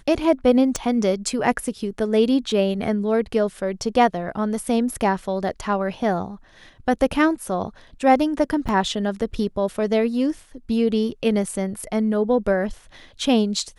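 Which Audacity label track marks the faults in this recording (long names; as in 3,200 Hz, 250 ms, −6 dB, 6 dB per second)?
0.760000	0.760000	click −11 dBFS
8.680000	8.690000	drop-out 6.9 ms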